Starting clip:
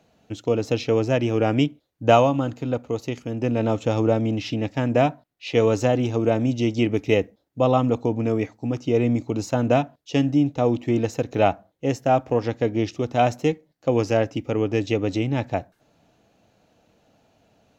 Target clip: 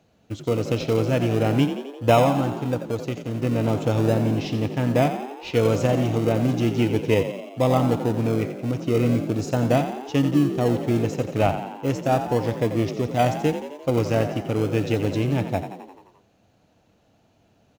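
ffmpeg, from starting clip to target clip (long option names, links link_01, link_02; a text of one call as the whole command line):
ffmpeg -i in.wav -filter_complex "[0:a]equalizer=frequency=95:width=1.5:gain=4,asplit=2[link_01][link_02];[link_02]acrusher=samples=41:mix=1:aa=0.000001:lfo=1:lforange=24.6:lforate=0.37,volume=-11.5dB[link_03];[link_01][link_03]amix=inputs=2:normalize=0,asplit=8[link_04][link_05][link_06][link_07][link_08][link_09][link_10][link_11];[link_05]adelay=87,afreqshift=44,volume=-10dB[link_12];[link_06]adelay=174,afreqshift=88,volume=-14.3dB[link_13];[link_07]adelay=261,afreqshift=132,volume=-18.6dB[link_14];[link_08]adelay=348,afreqshift=176,volume=-22.9dB[link_15];[link_09]adelay=435,afreqshift=220,volume=-27.2dB[link_16];[link_10]adelay=522,afreqshift=264,volume=-31.5dB[link_17];[link_11]adelay=609,afreqshift=308,volume=-35.8dB[link_18];[link_04][link_12][link_13][link_14][link_15][link_16][link_17][link_18]amix=inputs=8:normalize=0,volume=-2.5dB" out.wav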